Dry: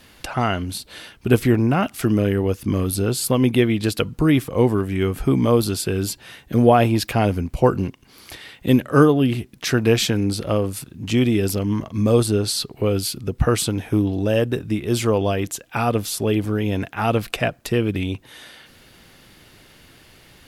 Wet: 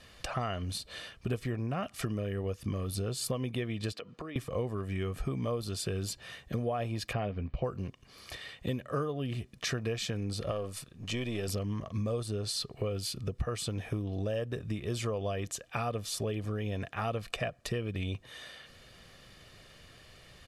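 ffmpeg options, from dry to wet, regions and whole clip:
-filter_complex "[0:a]asettb=1/sr,asplit=3[a][b][c];[a]atrim=end=3.924[d];[b]atrim=start=3.92:end=4.36,asetpts=PTS-STARTPTS,afade=t=in:d=0.004:c=qsin,afade=t=out:st=0.436:d=0.004:c=qsin,acrossover=split=210 5400:gain=0.0708 1 0.2[e][f][g];[e][f][g]amix=inputs=3:normalize=0,acompressor=threshold=-30dB:ratio=8:attack=3.2:release=140:knee=1:detection=peak[h];[c]atrim=start=4.356[i];[d][h]acrossfade=d=0.004:c1=hsin:c2=qsin[j];[j][i]acrossfade=d=0.004:c1=qsin:c2=hsin,asettb=1/sr,asplit=3[k][l][m];[k]atrim=end=7.134[n];[l]atrim=start=7.13:end=7.64,asetpts=PTS-STARTPTS,afade=t=in:d=0.004:c=qsin,afade=t=out:st=0.506:d=0.004:c=qsin,lowpass=f=3.7k:w=0.5412,lowpass=f=3.7k:w=1.3066,asplit=2[o][p];[p]adelay=15,volume=-13dB[q];[o][q]amix=inputs=2:normalize=0,atrim=end_sample=22491[r];[m]atrim=start=7.636[s];[n][r]acrossfade=d=0.004:c1=hsin:c2=qsin[t];[t][s]acrossfade=d=0.004:c1=qsin:c2=hsin,asettb=1/sr,asplit=3[u][v][w];[u]atrim=end=10.514[x];[v]atrim=start=10.51:end=11.48,asetpts=PTS-STARTPTS,afade=t=in:d=0.004:c=qsin,afade=t=out:st=0.966:d=0.004:c=qsin,aeval=exprs='if(lt(val(0),0),0.708*val(0),val(0))':c=same,lowshelf=f=350:g=-6.5[y];[w]atrim=start=11.476[z];[x][y]acrossfade=d=0.004:c1=hsin:c2=qsin[aa];[aa][z]acrossfade=d=0.004:c1=qsin:c2=hsin,lowpass=8.9k,aecho=1:1:1.7:0.46,acompressor=threshold=-24dB:ratio=6,volume=-6.5dB"

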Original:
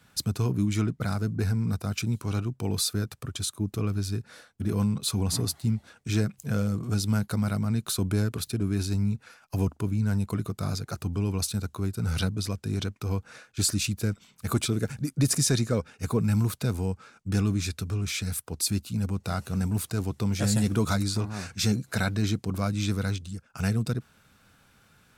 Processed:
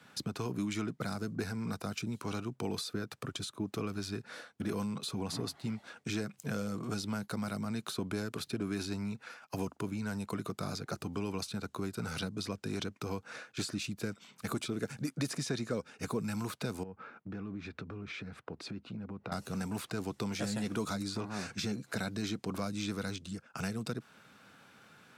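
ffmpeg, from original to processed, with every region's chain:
-filter_complex "[0:a]asettb=1/sr,asplit=3[a][b][c];[a]atrim=end=16.834[d];[b]atrim=start=16.83:end=19.32,asetpts=PTS-STARTPTS,afade=t=in:d=0.004:c=qsin,afade=t=out:st=2.486:d=0.004:c=qsin,lowpass=2k,acompressor=threshold=-38dB:ratio=5:attack=3.2:release=140:knee=1:detection=peak[e];[c]atrim=start=19.316[f];[d][e]acrossfade=d=0.004:c1=hsin:c2=qsin[g];[g][f]acrossfade=d=0.004:c1=qsin:c2=hsin,acrossover=split=510|4300[h][i][j];[h]acompressor=threshold=-35dB:ratio=4[k];[i]acompressor=threshold=-45dB:ratio=4[l];[j]acompressor=threshold=-44dB:ratio=4[m];[k][l][m]amix=inputs=3:normalize=0,highpass=190,highshelf=f=6.7k:g=-11.5,volume=4dB"

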